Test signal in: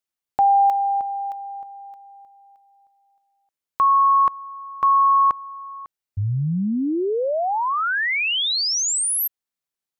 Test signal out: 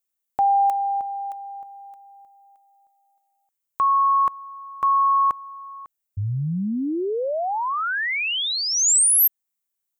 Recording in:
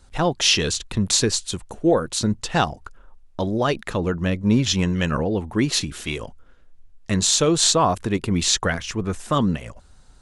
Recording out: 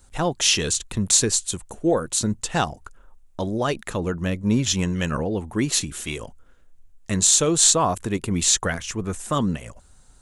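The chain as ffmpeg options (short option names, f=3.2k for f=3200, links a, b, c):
-af "aexciter=amount=3.3:drive=3:freq=6.6k,volume=-2.5dB"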